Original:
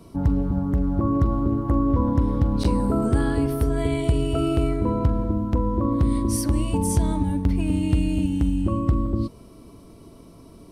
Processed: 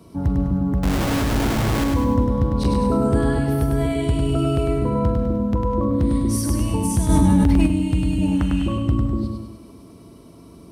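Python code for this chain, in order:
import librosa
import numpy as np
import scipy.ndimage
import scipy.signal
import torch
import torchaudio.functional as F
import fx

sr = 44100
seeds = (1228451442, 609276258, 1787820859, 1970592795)

y = scipy.signal.sosfilt(scipy.signal.butter(4, 50.0, 'highpass', fs=sr, output='sos'), x)
y = fx.schmitt(y, sr, flips_db=-28.5, at=(0.83, 1.84))
y = fx.peak_eq(y, sr, hz=fx.line((8.21, 630.0), (8.66, 3300.0)), db=14.5, octaves=1.8, at=(8.21, 8.66), fade=0.02)
y = fx.echo_feedback(y, sr, ms=101, feedback_pct=43, wet_db=-4)
y = fx.rev_gated(y, sr, seeds[0], gate_ms=230, shape='rising', drr_db=11.0)
y = fx.env_flatten(y, sr, amount_pct=100, at=(7.08, 7.66), fade=0.02)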